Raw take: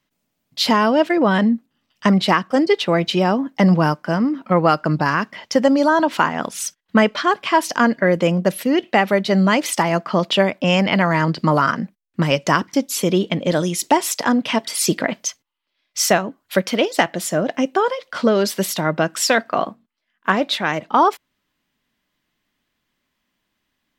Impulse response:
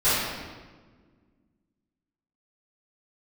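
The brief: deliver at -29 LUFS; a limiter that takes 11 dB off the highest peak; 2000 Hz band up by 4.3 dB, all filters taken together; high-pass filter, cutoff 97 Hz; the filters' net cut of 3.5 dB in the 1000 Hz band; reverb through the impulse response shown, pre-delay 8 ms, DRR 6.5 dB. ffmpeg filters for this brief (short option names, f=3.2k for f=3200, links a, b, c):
-filter_complex "[0:a]highpass=97,equalizer=f=1k:t=o:g=-6.5,equalizer=f=2k:t=o:g=7.5,alimiter=limit=-9.5dB:level=0:latency=1,asplit=2[a][b];[1:a]atrim=start_sample=2205,adelay=8[c];[b][c]afir=irnorm=-1:irlink=0,volume=-24dB[d];[a][d]amix=inputs=2:normalize=0,volume=-8.5dB"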